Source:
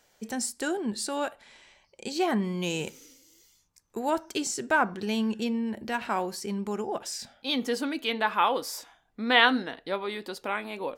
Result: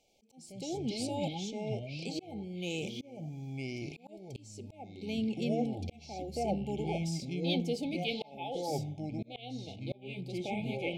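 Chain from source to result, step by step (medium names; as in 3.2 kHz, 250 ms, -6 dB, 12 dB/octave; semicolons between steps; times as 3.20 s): treble shelf 8.7 kHz -11.5 dB; ever faster or slower copies 80 ms, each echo -5 st, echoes 3; FFT band-reject 870–2100 Hz; slow attack 562 ms; trim -5 dB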